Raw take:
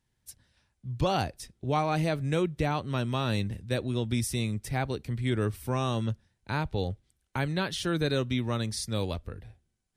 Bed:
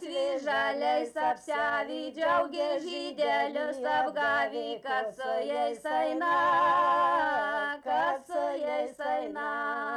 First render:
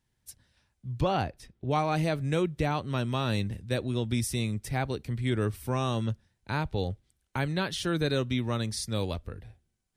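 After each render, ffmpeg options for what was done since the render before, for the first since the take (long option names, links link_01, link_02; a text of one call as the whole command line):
ffmpeg -i in.wav -filter_complex "[0:a]asettb=1/sr,asplit=3[link_01][link_02][link_03];[link_01]atrim=end=1.024[link_04];[link_02]atrim=start=1.02:end=1.71,asetpts=PTS-STARTPTS,afade=type=in:duration=0.004:curve=qsin,afade=type=out:start_time=0.686:duration=0.004:curve=qsin,bass=frequency=250:gain=0,treble=frequency=4000:gain=-11[link_05];[link_03]atrim=start=1.706[link_06];[link_04][link_05]acrossfade=duration=0.004:curve1=hsin:curve2=qsin[link_07];[link_07][link_06]acrossfade=duration=0.004:curve1=qsin:curve2=hsin" out.wav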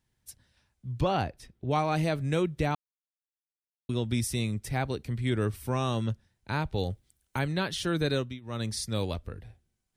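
ffmpeg -i in.wav -filter_complex "[0:a]asettb=1/sr,asplit=3[link_01][link_02][link_03];[link_01]atrim=end=6.744[link_04];[link_02]atrim=start=6.74:end=7.39,asetpts=PTS-STARTPTS,afade=type=in:duration=0.004:curve=qsin,afade=type=out:start_time=0.646:duration=0.004:curve=qsin,highshelf=frequency=7800:gain=10[link_05];[link_03]atrim=start=7.386[link_06];[link_04][link_05]acrossfade=duration=0.004:curve1=hsin:curve2=qsin[link_07];[link_07][link_06]acrossfade=duration=0.004:curve1=qsin:curve2=hsin,asplit=5[link_08][link_09][link_10][link_11][link_12];[link_08]atrim=end=2.75,asetpts=PTS-STARTPTS,afade=type=out:start_time=2.746:duration=0.004:curve=hsin[link_13];[link_09]atrim=start=2.75:end=3.89,asetpts=PTS-STARTPTS,volume=0[link_14];[link_10]atrim=start=3.89:end=8.4,asetpts=PTS-STARTPTS,afade=type=in:duration=0.004:curve=hsin,afade=type=out:start_time=4.26:duration=0.25:silence=0.0794328[link_15];[link_11]atrim=start=8.4:end=8.41,asetpts=PTS-STARTPTS,volume=-22dB[link_16];[link_12]atrim=start=8.41,asetpts=PTS-STARTPTS,afade=type=in:duration=0.25:silence=0.0794328[link_17];[link_13][link_14][link_15][link_16][link_17]concat=n=5:v=0:a=1" out.wav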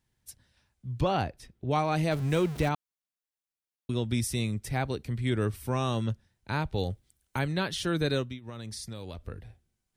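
ffmpeg -i in.wav -filter_complex "[0:a]asettb=1/sr,asplit=3[link_01][link_02][link_03];[link_01]atrim=end=2.114[link_04];[link_02]atrim=start=2.11:end=2.69,asetpts=PTS-STARTPTS,afade=type=in:duration=0.004:curve=qsin,afade=type=out:start_time=0.576:duration=0.004:curve=qsin,aeval=exprs='val(0)+0.5*0.0158*sgn(val(0))':channel_layout=same[link_05];[link_03]atrim=start=2.686[link_06];[link_04][link_05]acrossfade=duration=0.004:curve1=hsin:curve2=qsin[link_07];[link_07][link_06]acrossfade=duration=0.004:curve1=qsin:curve2=hsin,asettb=1/sr,asplit=3[link_08][link_09][link_10];[link_08]atrim=end=8.494[link_11];[link_09]atrim=start=8.49:end=9.28,asetpts=PTS-STARTPTS,afade=type=in:duration=0.004:curve=qsin,afade=type=out:start_time=0.786:duration=0.004:curve=qsin,acompressor=threshold=-36dB:ratio=6:attack=3.2:release=140:knee=1:detection=peak[link_12];[link_10]atrim=start=9.276[link_13];[link_11][link_12]acrossfade=duration=0.004:curve1=hsin:curve2=qsin[link_14];[link_14][link_13]acrossfade=duration=0.004:curve1=qsin:curve2=hsin" out.wav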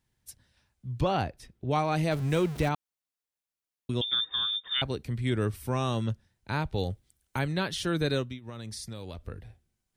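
ffmpeg -i in.wav -filter_complex "[0:a]asettb=1/sr,asplit=3[link_01][link_02][link_03];[link_01]atrim=end=4.014[link_04];[link_02]atrim=start=4.01:end=4.82,asetpts=PTS-STARTPTS,afade=type=in:duration=0.004:curve=qsin,afade=type=out:start_time=0.806:duration=0.004:curve=qsin,lowpass=frequency=3100:width_type=q:width=0.5098,lowpass=frequency=3100:width_type=q:width=0.6013,lowpass=frequency=3100:width_type=q:width=0.9,lowpass=frequency=3100:width_type=q:width=2.563,afreqshift=-3700[link_05];[link_03]atrim=start=4.816[link_06];[link_04][link_05]acrossfade=duration=0.004:curve1=hsin:curve2=qsin[link_07];[link_07][link_06]acrossfade=duration=0.004:curve1=qsin:curve2=hsin" out.wav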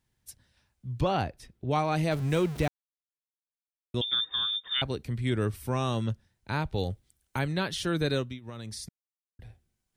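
ffmpeg -i in.wav -filter_complex "[0:a]asplit=5[link_01][link_02][link_03][link_04][link_05];[link_01]atrim=end=2.68,asetpts=PTS-STARTPTS,afade=type=out:start_time=2.676:duration=0.004:curve=hsin[link_06];[link_02]atrim=start=2.68:end=3.94,asetpts=PTS-STARTPTS,volume=0[link_07];[link_03]atrim=start=3.94:end=8.89,asetpts=PTS-STARTPTS,afade=type=in:duration=0.004:curve=hsin,afade=type=out:start_time=4.946:duration=0.004:curve=hsin[link_08];[link_04]atrim=start=8.89:end=9.39,asetpts=PTS-STARTPTS,volume=0[link_09];[link_05]atrim=start=9.39,asetpts=PTS-STARTPTS,afade=type=in:duration=0.004:curve=hsin[link_10];[link_06][link_07][link_08][link_09][link_10]concat=n=5:v=0:a=1" out.wav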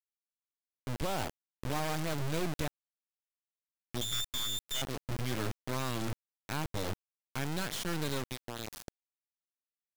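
ffmpeg -i in.wav -af "aresample=16000,asoftclip=type=tanh:threshold=-25dB,aresample=44100,acrusher=bits=3:dc=4:mix=0:aa=0.000001" out.wav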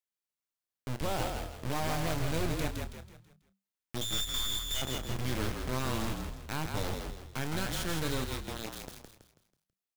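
ffmpeg -i in.wav -filter_complex "[0:a]asplit=2[link_01][link_02];[link_02]adelay=31,volume=-12dB[link_03];[link_01][link_03]amix=inputs=2:normalize=0,asplit=6[link_04][link_05][link_06][link_07][link_08][link_09];[link_05]adelay=163,afreqshift=-39,volume=-4.5dB[link_10];[link_06]adelay=326,afreqshift=-78,volume=-12.7dB[link_11];[link_07]adelay=489,afreqshift=-117,volume=-20.9dB[link_12];[link_08]adelay=652,afreqshift=-156,volume=-29dB[link_13];[link_09]adelay=815,afreqshift=-195,volume=-37.2dB[link_14];[link_04][link_10][link_11][link_12][link_13][link_14]amix=inputs=6:normalize=0" out.wav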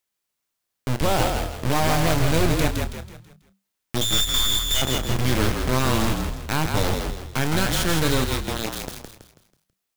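ffmpeg -i in.wav -af "volume=12dB" out.wav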